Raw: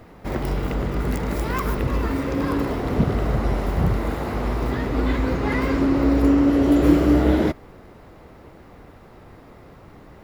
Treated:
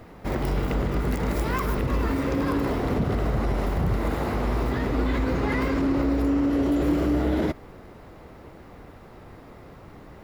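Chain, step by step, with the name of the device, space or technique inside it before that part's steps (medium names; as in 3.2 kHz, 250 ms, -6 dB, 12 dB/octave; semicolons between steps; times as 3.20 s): clipper into limiter (hard clipper -8.5 dBFS, distortion -28 dB; peak limiter -16 dBFS, peak gain reduction 7.5 dB)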